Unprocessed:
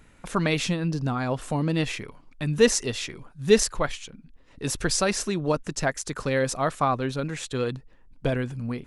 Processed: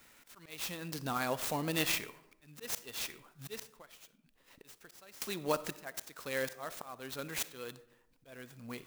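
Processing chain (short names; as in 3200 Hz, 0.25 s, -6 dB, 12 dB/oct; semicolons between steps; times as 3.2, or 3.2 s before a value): RIAA curve recording; auto swell 0.663 s; 3.62–5.22 compressor 10:1, threshold -48 dBFS, peak gain reduction 24 dB; reverb RT60 0.90 s, pre-delay 15 ms, DRR 15 dB; clock jitter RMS 0.031 ms; gain -4.5 dB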